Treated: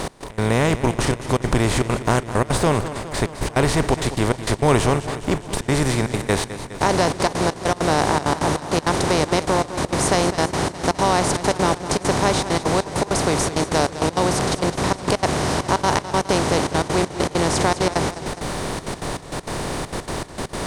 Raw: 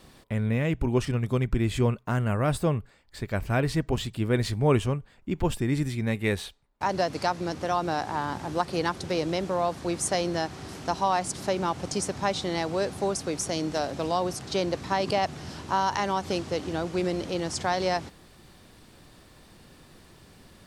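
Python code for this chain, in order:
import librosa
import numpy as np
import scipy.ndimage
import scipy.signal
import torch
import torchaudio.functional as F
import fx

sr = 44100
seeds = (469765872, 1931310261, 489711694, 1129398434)

y = fx.bin_compress(x, sr, power=0.4)
y = fx.step_gate(y, sr, bpm=198, pattern='x..x.xxxxx.x.x', floor_db=-24.0, edge_ms=4.5)
y = fx.echo_warbled(y, sr, ms=207, feedback_pct=66, rate_hz=2.8, cents=63, wet_db=-13)
y = F.gain(torch.from_numpy(y), 2.0).numpy()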